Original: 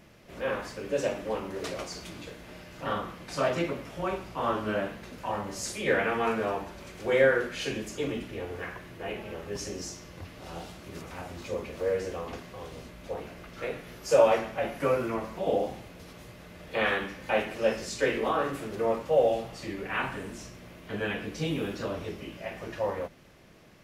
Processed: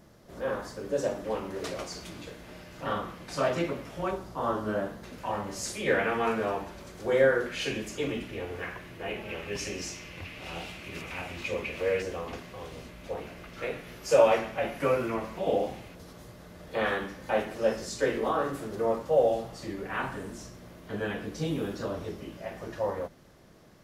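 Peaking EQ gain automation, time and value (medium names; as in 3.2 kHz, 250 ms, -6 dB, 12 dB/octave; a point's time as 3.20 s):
peaking EQ 2.5 kHz 0.76 oct
-11.5 dB
from 1.24 s -2 dB
from 4.11 s -13 dB
from 5.04 s -1 dB
from 6.82 s -7.5 dB
from 7.46 s +3 dB
from 9.29 s +13 dB
from 12.02 s +2 dB
from 15.95 s -8 dB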